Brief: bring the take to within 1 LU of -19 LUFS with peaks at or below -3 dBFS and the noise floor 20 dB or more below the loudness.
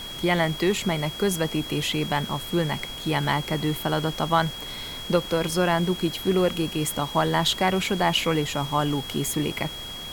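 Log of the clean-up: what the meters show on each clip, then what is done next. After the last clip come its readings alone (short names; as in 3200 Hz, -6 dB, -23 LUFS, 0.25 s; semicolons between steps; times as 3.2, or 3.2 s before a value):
steady tone 3300 Hz; tone level -35 dBFS; noise floor -36 dBFS; noise floor target -45 dBFS; loudness -25.0 LUFS; peak -7.5 dBFS; loudness target -19.0 LUFS
-> notch 3300 Hz, Q 30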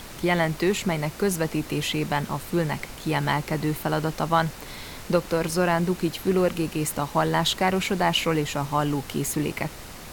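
steady tone none; noise floor -41 dBFS; noise floor target -45 dBFS
-> noise print and reduce 6 dB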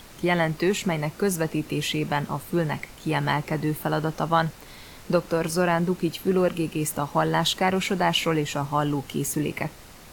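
noise floor -46 dBFS; loudness -25.0 LUFS; peak -8.0 dBFS; loudness target -19.0 LUFS
-> gain +6 dB; limiter -3 dBFS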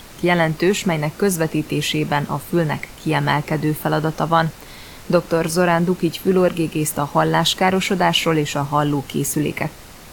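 loudness -19.5 LUFS; peak -3.0 dBFS; noise floor -40 dBFS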